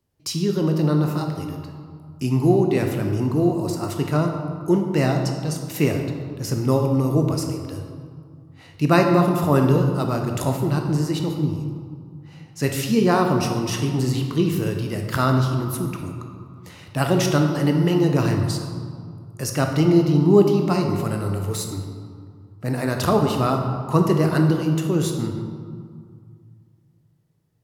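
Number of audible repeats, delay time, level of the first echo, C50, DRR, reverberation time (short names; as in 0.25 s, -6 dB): none, none, none, 4.5 dB, 3.0 dB, 2.1 s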